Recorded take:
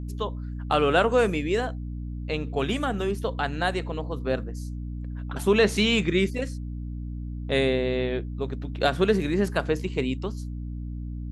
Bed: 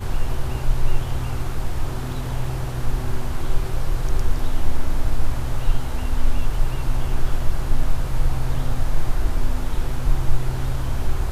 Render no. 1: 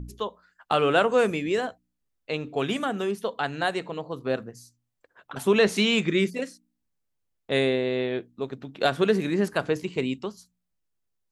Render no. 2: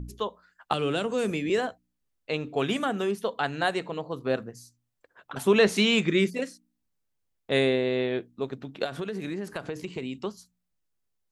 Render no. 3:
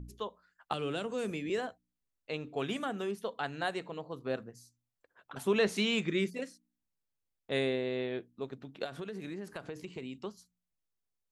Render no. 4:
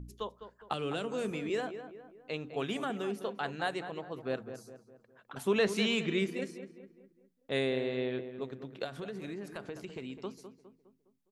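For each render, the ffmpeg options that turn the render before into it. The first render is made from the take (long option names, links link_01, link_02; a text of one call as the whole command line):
ffmpeg -i in.wav -af "bandreject=frequency=60:width_type=h:width=4,bandreject=frequency=120:width_type=h:width=4,bandreject=frequency=180:width_type=h:width=4,bandreject=frequency=240:width_type=h:width=4,bandreject=frequency=300:width_type=h:width=4" out.wav
ffmpeg -i in.wav -filter_complex "[0:a]asettb=1/sr,asplit=3[link_01][link_02][link_03];[link_01]atrim=end=0.734[link_04];[link_02]atrim=start=0.73:end=1.5,asetpts=PTS-STARTPTS,afade=type=in:duration=0.004:curve=qsin,afade=type=out:start_time=0.766:duration=0.004:curve=qsin,acrossover=split=370|3000[link_05][link_06][link_07];[link_06]acompressor=threshold=-32dB:ratio=6:attack=3.2:release=140:knee=2.83:detection=peak[link_08];[link_05][link_08][link_07]amix=inputs=3:normalize=0[link_09];[link_03]atrim=start=1.496[link_10];[link_04][link_09]acrossfade=duration=0.004:curve1=hsin:curve2=qsin[link_11];[link_11][link_10]acrossfade=duration=0.004:curve1=qsin:curve2=hsin,asplit=3[link_12][link_13][link_14];[link_12]afade=type=out:start_time=8.83:duration=0.02[link_15];[link_13]acompressor=threshold=-29dB:ratio=8:attack=3.2:release=140:knee=1:detection=peak,afade=type=in:start_time=8.83:duration=0.02,afade=type=out:start_time=10.14:duration=0.02[link_16];[link_14]afade=type=in:start_time=10.14:duration=0.02[link_17];[link_15][link_16][link_17]amix=inputs=3:normalize=0" out.wav
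ffmpeg -i in.wav -af "volume=-8dB" out.wav
ffmpeg -i in.wav -filter_complex "[0:a]asplit=2[link_01][link_02];[link_02]adelay=205,lowpass=frequency=1900:poles=1,volume=-10dB,asplit=2[link_03][link_04];[link_04]adelay=205,lowpass=frequency=1900:poles=1,volume=0.47,asplit=2[link_05][link_06];[link_06]adelay=205,lowpass=frequency=1900:poles=1,volume=0.47,asplit=2[link_07][link_08];[link_08]adelay=205,lowpass=frequency=1900:poles=1,volume=0.47,asplit=2[link_09][link_10];[link_10]adelay=205,lowpass=frequency=1900:poles=1,volume=0.47[link_11];[link_01][link_03][link_05][link_07][link_09][link_11]amix=inputs=6:normalize=0" out.wav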